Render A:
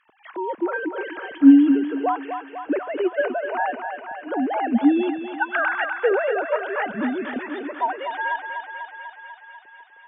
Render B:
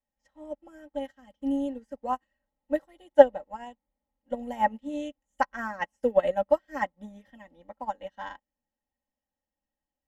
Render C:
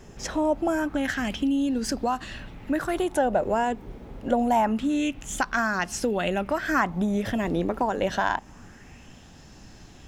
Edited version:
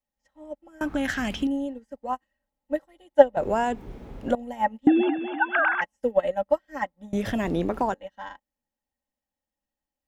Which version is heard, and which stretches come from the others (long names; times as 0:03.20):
B
0:00.81–0:01.47: punch in from C
0:03.37–0:04.35: punch in from C
0:04.87–0:05.81: punch in from A
0:07.13–0:07.94: punch in from C